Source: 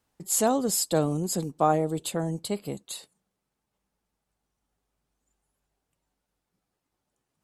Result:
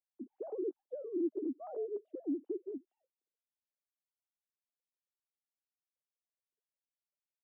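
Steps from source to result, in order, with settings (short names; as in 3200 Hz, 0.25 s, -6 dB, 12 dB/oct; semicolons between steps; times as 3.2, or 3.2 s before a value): sine-wave speech; Butterworth band-pass 290 Hz, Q 2.1; gain -1.5 dB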